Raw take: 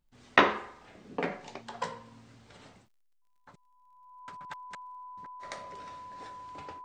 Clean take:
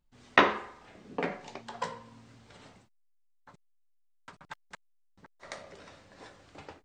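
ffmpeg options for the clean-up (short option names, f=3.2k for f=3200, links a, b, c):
-af "adeclick=t=4,bandreject=f=1k:w=30"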